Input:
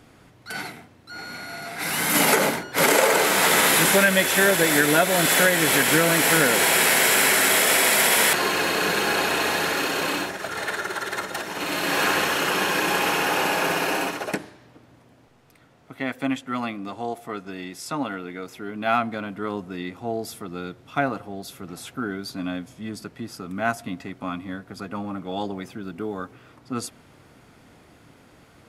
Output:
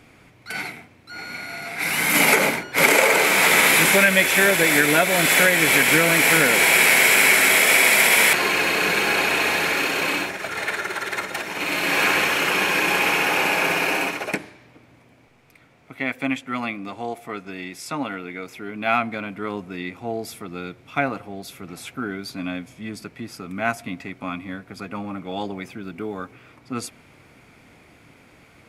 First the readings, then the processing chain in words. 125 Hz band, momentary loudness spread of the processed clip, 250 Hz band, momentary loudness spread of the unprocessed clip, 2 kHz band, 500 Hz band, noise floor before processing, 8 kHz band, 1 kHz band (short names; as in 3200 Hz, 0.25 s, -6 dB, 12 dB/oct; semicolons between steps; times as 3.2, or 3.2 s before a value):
0.0 dB, 20 LU, 0.0 dB, 19 LU, +4.5 dB, 0.0 dB, -54 dBFS, 0.0 dB, +0.5 dB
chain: bell 2300 Hz +10.5 dB 0.35 oct; short-mantissa float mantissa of 8-bit